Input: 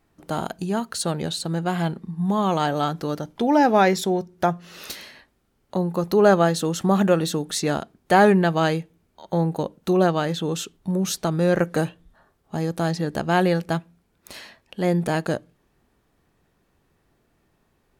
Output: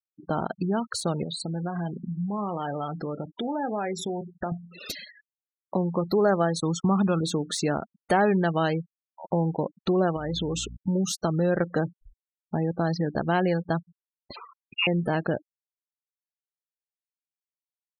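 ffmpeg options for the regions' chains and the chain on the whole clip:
-filter_complex "[0:a]asettb=1/sr,asplit=3[s0][s1][s2];[s0]atrim=end=1.234[s3];[s1]atrim=start=1.23:end=4.52,asetpts=PTS-STARTPTS,afade=t=in:d=0.004:c=qsin,afade=t=out:st=3.286:d=0.004:c=qsin,adynamicequalizer=threshold=0.00501:dfrequency=4600:dqfactor=2.3:tfrequency=4600:tqfactor=2.3:attack=5:release=100:ratio=0.375:range=2.5:mode=cutabove:tftype=bell,acompressor=threshold=0.0224:ratio=3:attack=3.2:release=140:knee=1:detection=peak,asplit=2[s4][s5];[s5]adelay=29,volume=0.251[s6];[s4][s6]amix=inputs=2:normalize=0,atrim=end_sample=145089[s7];[s2]atrim=start=4.516[s8];[s3][s7]acrossfade=d=0.004:c1=hsin:c2=qsin[s9];[s9][s8]acrossfade=d=0.004:c1=qsin:c2=hsin,asettb=1/sr,asplit=3[s10][s11][s12];[s10]atrim=end=6.604[s13];[s11]atrim=start=6.6:end=7.22,asetpts=PTS-STARTPTS,afade=t=in:d=0.004:c=qsin,afade=t=out:st=0.616:d=0.004:c=qsin,aecho=1:1:0.9:0.42,atrim=end_sample=27342,asubboost=boost=2.5:cutoff=230,agate=range=0.0224:threshold=0.0501:ratio=3:release=100:detection=peak[s14];[s12]atrim=start=7.216[s15];[s13][s14]acrossfade=d=0.004:c1=hsin:c2=qsin[s16];[s16][s15]acrossfade=d=0.004:c1=qsin:c2=hsin,asettb=1/sr,asplit=3[s17][s18][s19];[s17]atrim=end=10.164[s20];[s18]atrim=start=10.16:end=10.77,asetpts=PTS-STARTPTS,afade=t=in:d=0.004:c=qsin,afade=t=out:st=0.606:d=0.004:c=qsin,acompressor=threshold=0.0501:ratio=6:attack=3.2:release=140:knee=1:detection=peak,aeval=exprs='val(0)+0.00794*(sin(2*PI*60*n/s)+sin(2*PI*2*60*n/s)/2+sin(2*PI*3*60*n/s)/3+sin(2*PI*4*60*n/s)/4+sin(2*PI*5*60*n/s)/5)':c=same[s21];[s19]atrim=start=10.766[s22];[s20][s21]acrossfade=d=0.004:c1=hsin:c2=qsin[s23];[s23][s22]acrossfade=d=0.004:c1=qsin:c2=hsin,asettb=1/sr,asplit=3[s24][s25][s26];[s24]atrim=end=14.364[s27];[s25]atrim=start=14.36:end=14.87,asetpts=PTS-STARTPTS,afade=t=in:d=0.004:c=qsin,afade=t=out:st=0.506:d=0.004:c=qsin,agate=range=0.447:threshold=0.00224:ratio=16:release=100:detection=peak,lowpass=f=2600:t=q:w=0.5098,lowpass=f=2600:t=q:w=0.6013,lowpass=f=2600:t=q:w=0.9,lowpass=f=2600:t=q:w=2.563,afreqshift=-3000[s28];[s26]atrim=start=14.866[s29];[s27][s28]acrossfade=d=0.004:c1=hsin:c2=qsin[s30];[s30][s29]acrossfade=d=0.004:c1=qsin:c2=hsin,acompressor=threshold=0.0316:ratio=2,afftfilt=real='re*gte(hypot(re,im),0.02)':imag='im*gte(hypot(re,im),0.02)':win_size=1024:overlap=0.75,deesser=0.6,volume=1.5"

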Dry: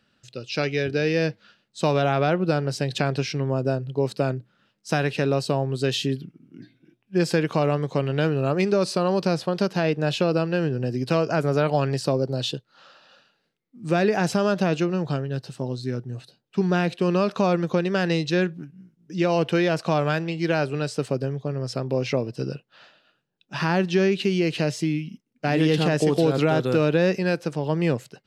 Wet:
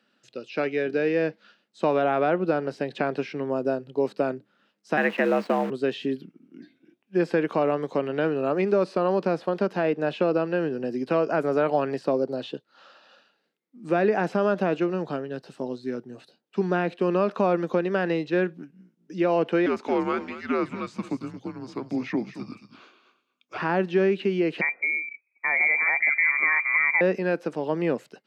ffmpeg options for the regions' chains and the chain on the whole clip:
-filter_complex "[0:a]asettb=1/sr,asplit=3[s0][s1][s2];[s0]atrim=end=4.974[s3];[s1]atrim=start=4.97:end=5.7,asetpts=PTS-STARTPTS,afade=t=in:d=0.004:c=qsin,afade=t=out:st=0.726:d=0.004:c=qsin,equalizer=f=1900:w=1.4:g=9.5,afreqshift=70,acrusher=bits=6:dc=4:mix=0:aa=0.000001[s4];[s2]atrim=start=5.696[s5];[s3][s4]acrossfade=d=0.004:c1=hsin:c2=qsin[s6];[s6][s5]acrossfade=d=0.004:c1=qsin:c2=hsin,asettb=1/sr,asplit=3[s7][s8][s9];[s7]atrim=end=19.664[s10];[s8]atrim=start=19.66:end=23.58,asetpts=PTS-STARTPTS,afade=t=in:d=0.004:c=qsin,afade=t=out:st=3.916:d=0.004:c=qsin,equalizer=f=6800:w=6.1:g=8.5,afreqshift=-250,aecho=1:1:225:0.211,atrim=end_sample=172872[s11];[s9]atrim=start=23.576[s12];[s10][s11]acrossfade=d=0.004:c1=hsin:c2=qsin[s13];[s13][s12]acrossfade=d=0.004:c1=qsin:c2=hsin,asettb=1/sr,asplit=3[s14][s15][s16];[s14]atrim=end=24.614[s17];[s15]atrim=start=24.61:end=27.01,asetpts=PTS-STARTPTS,afade=t=in:d=0.004:c=qsin,afade=t=out:st=2.396:d=0.004:c=qsin,lowshelf=f=110:g=10,bandreject=f=840:w=14,lowpass=f=2100:t=q:w=0.5098,lowpass=f=2100:t=q:w=0.6013,lowpass=f=2100:t=q:w=0.9,lowpass=f=2100:t=q:w=2.563,afreqshift=-2500[s18];[s16]atrim=start=27.006[s19];[s17][s18]acrossfade=d=0.004:c1=hsin:c2=qsin[s20];[s20][s19]acrossfade=d=0.004:c1=qsin:c2=hsin,highpass=f=210:w=0.5412,highpass=f=210:w=1.3066,highshelf=f=4300:g=-6,acrossover=split=2700[s21][s22];[s22]acompressor=threshold=0.00224:ratio=4:attack=1:release=60[s23];[s21][s23]amix=inputs=2:normalize=0"

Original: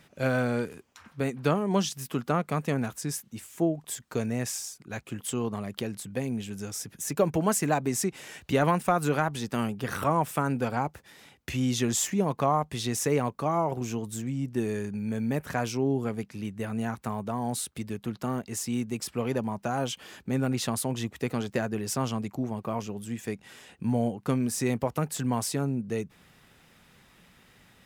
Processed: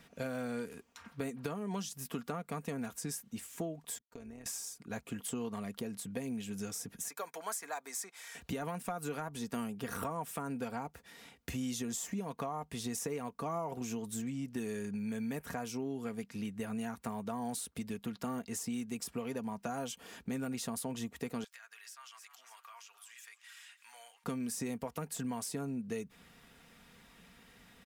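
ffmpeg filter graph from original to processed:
-filter_complex "[0:a]asettb=1/sr,asplit=3[s0][s1][s2];[s0]atrim=end=3.984[s3];[s1]atrim=start=3.98:end=4.46,asetpts=PTS-STARTPTS,afade=t=in:d=0.004:c=qsin,afade=t=out:st=0.476:d=0.004:c=qsin,agate=range=0.0224:threshold=0.02:ratio=3:release=100:detection=peak,acompressor=threshold=0.00891:ratio=10:attack=3.2:release=140:knee=1:detection=peak,tremolo=f=160:d=0.621[s4];[s2]atrim=start=4.456[s5];[s3][s4]acrossfade=d=0.004:c1=hsin:c2=qsin[s6];[s6][s5]acrossfade=d=0.004:c1=qsin:c2=hsin,asettb=1/sr,asplit=3[s7][s8][s9];[s7]atrim=end=7.084[s10];[s8]atrim=start=7.08:end=8.35,asetpts=PTS-STARTPTS,afade=t=in:d=0.004:c=qsin,afade=t=out:st=1.266:d=0.004:c=qsin,highpass=1200,bandreject=f=2800:w=7[s11];[s9]atrim=start=8.346[s12];[s10][s11]acrossfade=d=0.004:c1=hsin:c2=qsin[s13];[s13][s12]acrossfade=d=0.004:c1=qsin:c2=hsin,asettb=1/sr,asplit=3[s14][s15][s16];[s14]atrim=end=21.444[s17];[s15]atrim=start=21.44:end=24.24,asetpts=PTS-STARTPTS,afade=t=in:d=0.004:c=qsin,afade=t=out:st=2.796:d=0.004:c=qsin,highpass=f=1300:w=0.5412,highpass=f=1300:w=1.3066,asplit=4[s18][s19][s20][s21];[s19]adelay=294,afreqshift=68,volume=0.112[s22];[s20]adelay=588,afreqshift=136,volume=0.0403[s23];[s21]adelay=882,afreqshift=204,volume=0.0146[s24];[s18][s22][s23][s24]amix=inputs=4:normalize=0,atrim=end_sample=123480,acompressor=threshold=0.00398:ratio=5:attack=3.2:release=140:knee=1:detection=peak[s25];[s16]atrim=start=24.236[s26];[s17][s25]acrossfade=d=0.004:c1=hsin:c2=qsin[s27];[s27][s26]acrossfade=d=0.004:c1=qsin:c2=hsin,aecho=1:1:4.3:0.44,alimiter=limit=0.141:level=0:latency=1:release=475,acrossover=split=1300|6500[s28][s29][s30];[s28]acompressor=threshold=0.02:ratio=4[s31];[s29]acompressor=threshold=0.00447:ratio=4[s32];[s30]acompressor=threshold=0.0126:ratio=4[s33];[s31][s32][s33]amix=inputs=3:normalize=0,volume=0.75"

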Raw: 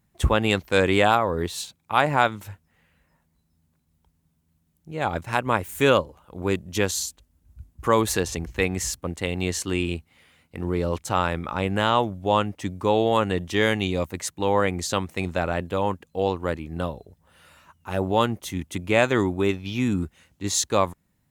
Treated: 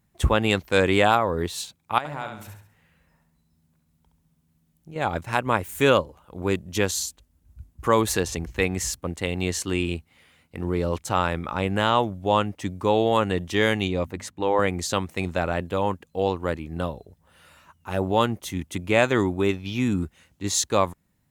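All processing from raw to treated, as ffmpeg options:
-filter_complex "[0:a]asettb=1/sr,asplit=3[s0][s1][s2];[s0]atrim=end=1.984[s3];[s1]atrim=start=1.98:end=4.96,asetpts=PTS-STARTPTS,afade=t=in:d=0.004:c=qsin,afade=t=out:st=2.976:d=0.004:c=qsin,acompressor=threshold=0.01:ratio=2:attack=3.2:release=140:knee=1:detection=peak,aecho=1:1:68|136|204|272|340:0.501|0.205|0.0842|0.0345|0.0142,atrim=end_sample=131418[s4];[s2]atrim=start=4.956[s5];[s3][s4]acrossfade=d=0.004:c1=hsin:c2=qsin[s6];[s6][s5]acrossfade=d=0.004:c1=qsin:c2=hsin,asettb=1/sr,asplit=3[s7][s8][s9];[s7]atrim=end=13.884[s10];[s8]atrim=start=13.88:end=14.59,asetpts=PTS-STARTPTS,afade=t=in:d=0.004:c=qsin,afade=t=out:st=0.706:d=0.004:c=qsin,highshelf=f=4400:g=-10.5,bandreject=f=50:t=h:w=6,bandreject=f=100:t=h:w=6,bandreject=f=150:t=h:w=6,bandreject=f=200:t=h:w=6,bandreject=f=250:t=h:w=6[s11];[s9]atrim=start=14.586[s12];[s10][s11]acrossfade=d=0.004:c1=hsin:c2=qsin[s13];[s13][s12]acrossfade=d=0.004:c1=qsin:c2=hsin"

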